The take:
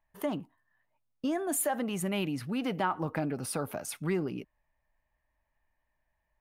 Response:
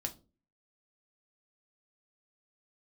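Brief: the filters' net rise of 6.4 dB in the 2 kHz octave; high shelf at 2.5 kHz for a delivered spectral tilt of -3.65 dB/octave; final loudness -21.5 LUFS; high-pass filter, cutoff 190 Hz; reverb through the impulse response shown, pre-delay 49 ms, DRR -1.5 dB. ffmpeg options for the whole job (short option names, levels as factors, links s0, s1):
-filter_complex "[0:a]highpass=190,equalizer=f=2000:t=o:g=6,highshelf=f=2500:g=5,asplit=2[s0][s1];[1:a]atrim=start_sample=2205,adelay=49[s2];[s1][s2]afir=irnorm=-1:irlink=0,volume=1.19[s3];[s0][s3]amix=inputs=2:normalize=0,volume=1.88"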